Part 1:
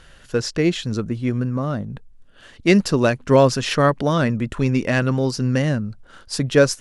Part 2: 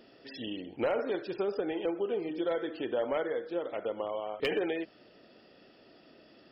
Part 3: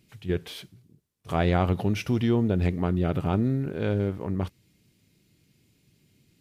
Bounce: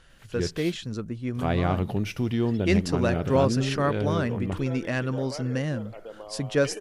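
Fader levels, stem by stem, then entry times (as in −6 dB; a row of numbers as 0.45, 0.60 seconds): −8.5, −7.0, −2.0 decibels; 0.00, 2.20, 0.10 seconds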